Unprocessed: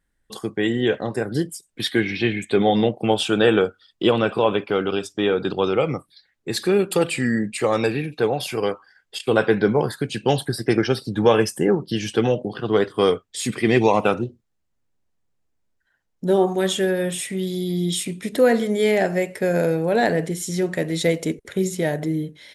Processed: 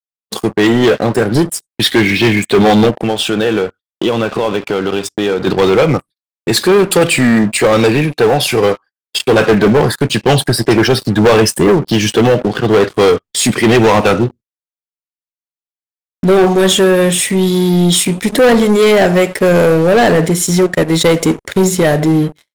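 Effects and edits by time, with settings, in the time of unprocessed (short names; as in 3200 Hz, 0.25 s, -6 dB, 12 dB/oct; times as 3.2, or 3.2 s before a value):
2.9–5.47 compressor 2.5:1, threshold -29 dBFS
20.46–21.08 transient shaper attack 0 dB, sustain -9 dB
whole clip: sample leveller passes 3; gate -33 dBFS, range -43 dB; sample leveller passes 1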